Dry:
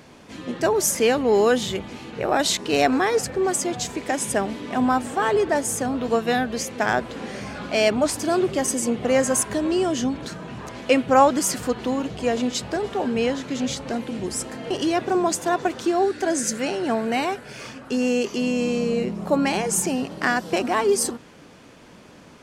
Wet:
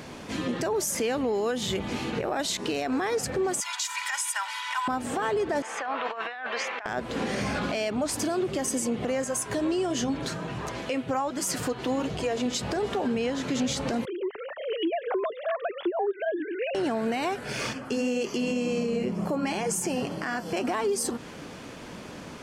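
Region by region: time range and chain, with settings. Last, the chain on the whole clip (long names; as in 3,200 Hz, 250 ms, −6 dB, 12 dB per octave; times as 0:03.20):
0:03.60–0:04.88: Butterworth high-pass 910 Hz 48 dB per octave + comb filter 2.1 ms, depth 85%
0:05.62–0:06.86: flat-topped band-pass 1,500 Hz, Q 0.8 + compressor whose output falls as the input rises −38 dBFS
0:09.24–0:12.46: parametric band 220 Hz −8.5 dB 0.22 octaves + flanger 1.4 Hz, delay 4.8 ms, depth 3.2 ms, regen −59%
0:14.05–0:16.75: three sine waves on the formant tracks + downward compressor 2 to 1, threshold −38 dBFS
0:17.73–0:20.68: flanger 2 Hz, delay 5.7 ms, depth 4.6 ms, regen −57% + Butterworth band-reject 3,800 Hz, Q 7.5
whole clip: downward compressor 6 to 1, threshold −29 dBFS; brickwall limiter −25.5 dBFS; level +6 dB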